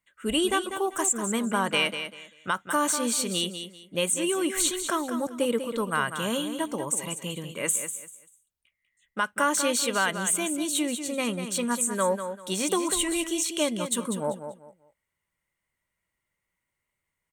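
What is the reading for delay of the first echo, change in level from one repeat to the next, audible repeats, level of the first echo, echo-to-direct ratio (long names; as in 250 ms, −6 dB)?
195 ms, −12.0 dB, 3, −9.0 dB, −8.5 dB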